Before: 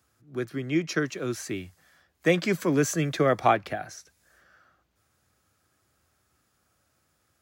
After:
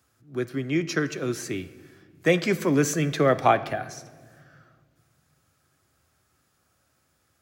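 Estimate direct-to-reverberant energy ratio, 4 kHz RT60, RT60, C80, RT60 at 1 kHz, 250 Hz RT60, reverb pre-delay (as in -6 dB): 11.5 dB, 1.3 s, 1.7 s, 17.0 dB, 1.5 s, 2.7 s, 8 ms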